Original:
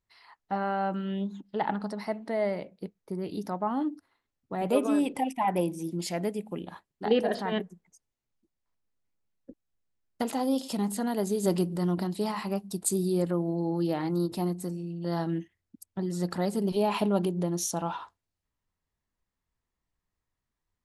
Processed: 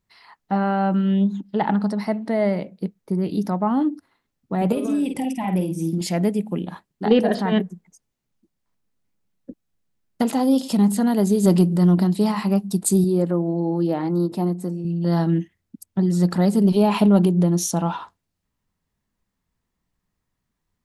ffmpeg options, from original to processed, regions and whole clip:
ffmpeg -i in.wav -filter_complex "[0:a]asettb=1/sr,asplit=3[link_01][link_02][link_03];[link_01]atrim=end=4.724[link_04];[link_02]atrim=start=4.72:end=6.01,asetpts=PTS-STARTPTS,afade=type=in:duration=0.004:curve=qsin,afade=type=out:start_time=1.286:duration=0.004:curve=qsin,equalizer=frequency=980:width=1:gain=-9,acompressor=threshold=-30dB:ratio=4:attack=3.2:release=140:knee=1:detection=peak,asplit=2[link_05][link_06];[link_06]adelay=49,volume=-7dB[link_07];[link_05][link_07]amix=inputs=2:normalize=0,atrim=end_sample=56889[link_08];[link_03]atrim=start=6.006[link_09];[link_04][link_08]acrossfade=duration=0.004:curve1=hsin:curve2=qsin[link_10];[link_10][link_09]acrossfade=duration=0.004:curve1=qsin:curve2=hsin,asettb=1/sr,asplit=3[link_11][link_12][link_13];[link_11]atrim=end=13.044[link_14];[link_12]atrim=start=13.04:end=14.85,asetpts=PTS-STARTPTS,afade=type=in:duration=0.004:curve=qsin,afade=type=out:start_time=1.806:duration=0.004:curve=qsin,highpass=frequency=780:poles=1,tiltshelf=frequency=1100:gain=8[link_15];[link_13]atrim=start=14.846[link_16];[link_14][link_15]acrossfade=duration=0.004:curve1=hsin:curve2=qsin[link_17];[link_17][link_16]acrossfade=duration=0.004:curve1=qsin:curve2=hsin,equalizer=frequency=190:width=1.3:gain=7.5,acontrast=53" out.wav

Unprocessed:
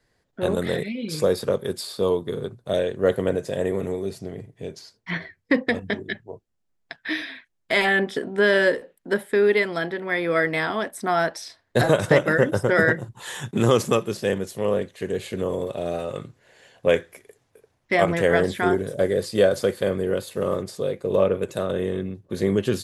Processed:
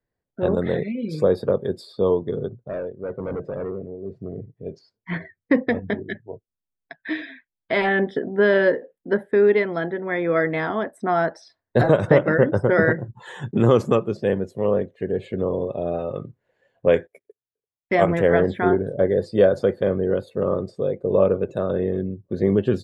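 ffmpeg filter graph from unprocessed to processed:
ffmpeg -i in.wav -filter_complex "[0:a]asettb=1/sr,asplit=3[link_01][link_02][link_03];[link_01]atrim=end=2.554[link_04];[link_02]atrim=start=2.55:end=4.66,asetpts=PTS-STARTPTS,afade=type=in:duration=0.004:curve=qsin,afade=type=out:start_time=2.106:duration=0.004:curve=qsin,aemphasis=mode=reproduction:type=75kf,tremolo=f=1.1:d=0.69,asoftclip=type=hard:threshold=-27dB[link_05];[link_03]atrim=start=4.656[link_06];[link_04][link_05]acrossfade=duration=0.004:curve1=hsin:curve2=qsin[link_07];[link_07][link_06]acrossfade=duration=0.004:curve1=qsin:curve2=hsin,asettb=1/sr,asplit=3[link_08][link_09][link_10];[link_08]atrim=end=16.934[link_11];[link_09]atrim=start=16.93:end=18.2,asetpts=PTS-STARTPTS,afade=type=in:duration=0.004:curve=qsin,afade=type=out:start_time=1.266:duration=0.004:curve=qsin,agate=range=-23dB:threshold=-47dB:ratio=16:release=100:detection=peak,highshelf=frequency=6600:gain=10.5[link_12];[link_10]atrim=start=18.196[link_13];[link_11][link_12]acrossfade=duration=0.004:curve1=hsin:curve2=qsin[link_14];[link_14][link_13]acrossfade=duration=0.004:curve1=qsin:curve2=hsin,afftdn=noise_reduction=16:noise_floor=-41,lowpass=frequency=1100:poles=1,volume=3dB" out.wav

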